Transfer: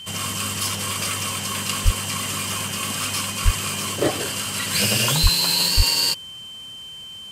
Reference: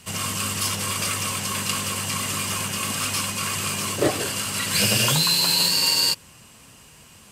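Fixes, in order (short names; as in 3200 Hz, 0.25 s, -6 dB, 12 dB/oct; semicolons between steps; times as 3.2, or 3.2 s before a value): notch 3100 Hz, Q 30; de-plosive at 1.84/3.44/5.22/5.76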